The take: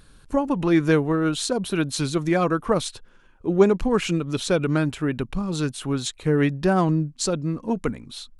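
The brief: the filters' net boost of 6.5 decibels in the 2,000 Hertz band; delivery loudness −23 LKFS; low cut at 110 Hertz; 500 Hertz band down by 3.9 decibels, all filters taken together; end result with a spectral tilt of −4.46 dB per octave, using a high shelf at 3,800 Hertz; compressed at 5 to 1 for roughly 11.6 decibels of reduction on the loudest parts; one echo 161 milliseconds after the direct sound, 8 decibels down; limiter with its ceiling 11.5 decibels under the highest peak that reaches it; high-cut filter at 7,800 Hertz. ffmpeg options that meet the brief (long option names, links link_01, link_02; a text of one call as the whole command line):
ffmpeg -i in.wav -af "highpass=110,lowpass=7800,equalizer=frequency=500:width_type=o:gain=-5.5,equalizer=frequency=2000:width_type=o:gain=8,highshelf=frequency=3800:gain=4.5,acompressor=threshold=-27dB:ratio=5,alimiter=level_in=2dB:limit=-24dB:level=0:latency=1,volume=-2dB,aecho=1:1:161:0.398,volume=11dB" out.wav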